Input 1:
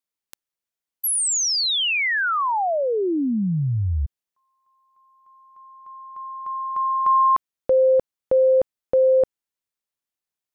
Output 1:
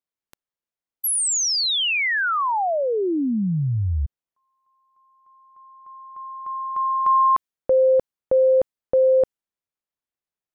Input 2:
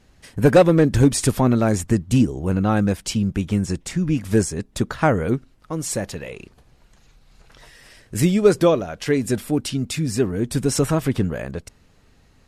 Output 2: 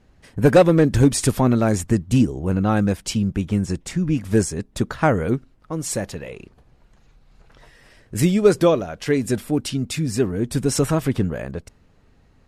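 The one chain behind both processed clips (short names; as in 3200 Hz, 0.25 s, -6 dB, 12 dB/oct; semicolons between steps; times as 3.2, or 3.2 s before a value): mismatched tape noise reduction decoder only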